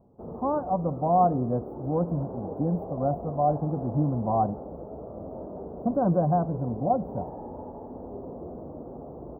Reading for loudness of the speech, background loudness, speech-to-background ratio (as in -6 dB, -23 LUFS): -27.5 LUFS, -39.0 LUFS, 11.5 dB